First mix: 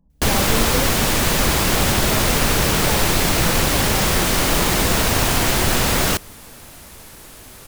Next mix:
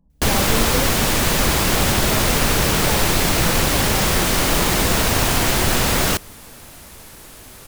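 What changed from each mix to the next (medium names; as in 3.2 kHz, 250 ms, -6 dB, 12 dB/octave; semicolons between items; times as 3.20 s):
no change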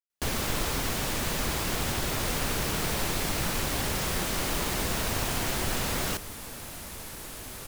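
speech: muted; first sound -12.0 dB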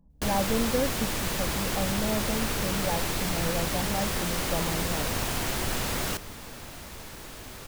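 speech: unmuted; second sound: add peaking EQ 11 kHz -7.5 dB 0.97 oct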